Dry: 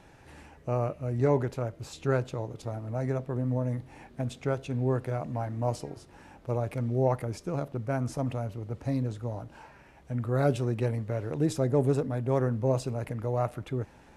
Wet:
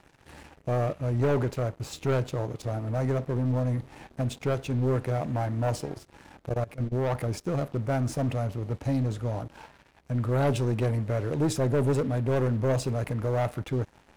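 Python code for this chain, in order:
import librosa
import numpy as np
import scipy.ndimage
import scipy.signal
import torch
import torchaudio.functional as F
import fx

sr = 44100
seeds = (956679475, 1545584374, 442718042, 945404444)

y = fx.leveller(x, sr, passes=3)
y = fx.level_steps(y, sr, step_db=20, at=(6.49, 7.15))
y = y * librosa.db_to_amplitude(-6.0)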